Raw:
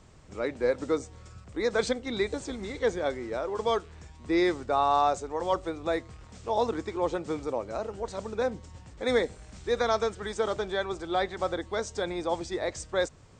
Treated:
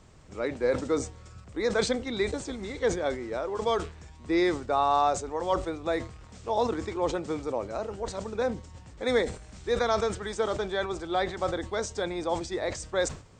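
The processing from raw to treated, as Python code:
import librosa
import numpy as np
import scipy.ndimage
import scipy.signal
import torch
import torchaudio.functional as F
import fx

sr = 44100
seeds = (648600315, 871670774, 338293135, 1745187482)

y = fx.sustainer(x, sr, db_per_s=130.0)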